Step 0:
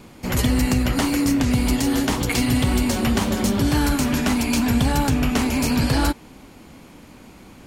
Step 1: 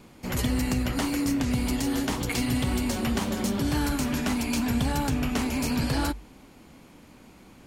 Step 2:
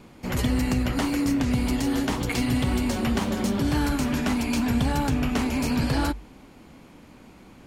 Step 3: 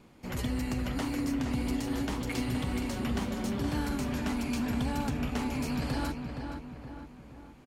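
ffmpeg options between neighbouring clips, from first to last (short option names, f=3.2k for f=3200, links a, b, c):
-af "bandreject=f=50:t=h:w=6,bandreject=f=100:t=h:w=6,volume=-6.5dB"
-af "highshelf=f=4.9k:g=-6,volume=2.5dB"
-filter_complex "[0:a]asplit=2[a][b];[b]adelay=469,lowpass=f=2.5k:p=1,volume=-6dB,asplit=2[c][d];[d]adelay=469,lowpass=f=2.5k:p=1,volume=0.51,asplit=2[e][f];[f]adelay=469,lowpass=f=2.5k:p=1,volume=0.51,asplit=2[g][h];[h]adelay=469,lowpass=f=2.5k:p=1,volume=0.51,asplit=2[i][j];[j]adelay=469,lowpass=f=2.5k:p=1,volume=0.51,asplit=2[k][l];[l]adelay=469,lowpass=f=2.5k:p=1,volume=0.51[m];[a][c][e][g][i][k][m]amix=inputs=7:normalize=0,volume=-8.5dB"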